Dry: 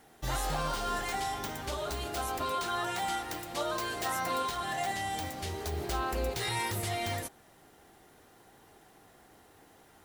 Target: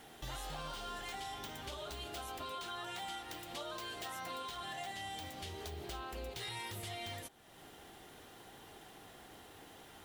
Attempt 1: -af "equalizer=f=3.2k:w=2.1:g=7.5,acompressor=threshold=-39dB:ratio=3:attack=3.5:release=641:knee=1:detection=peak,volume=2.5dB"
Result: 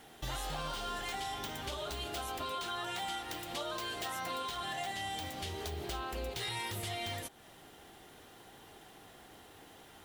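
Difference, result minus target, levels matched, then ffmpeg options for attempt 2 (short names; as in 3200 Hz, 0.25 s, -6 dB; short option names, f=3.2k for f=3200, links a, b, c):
compressor: peak gain reduction -5 dB
-af "equalizer=f=3.2k:w=2.1:g=7.5,acompressor=threshold=-46.5dB:ratio=3:attack=3.5:release=641:knee=1:detection=peak,volume=2.5dB"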